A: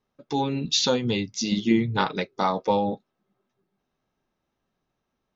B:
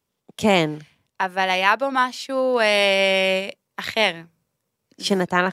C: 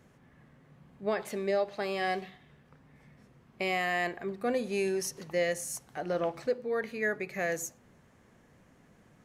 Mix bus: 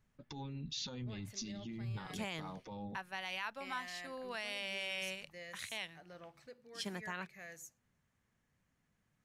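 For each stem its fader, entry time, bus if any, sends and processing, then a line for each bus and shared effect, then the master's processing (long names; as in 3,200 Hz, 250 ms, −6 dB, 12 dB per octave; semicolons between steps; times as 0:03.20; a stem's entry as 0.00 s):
−3.0 dB, 0.00 s, bus A, no send, spectral tilt −2.5 dB per octave; brickwall limiter −14.5 dBFS, peak gain reduction 9 dB; downward compressor, threshold −28 dBFS, peak gain reduction 9.5 dB
−15.5 dB, 1.75 s, no bus, no send, no processing
−14.0 dB, 0.00 s, bus A, no send, no processing
bus A: 0.0 dB, brickwall limiter −31 dBFS, peak gain reduction 11 dB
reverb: not used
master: parametric band 440 Hz −11 dB 2.4 octaves; brickwall limiter −29 dBFS, peak gain reduction 7 dB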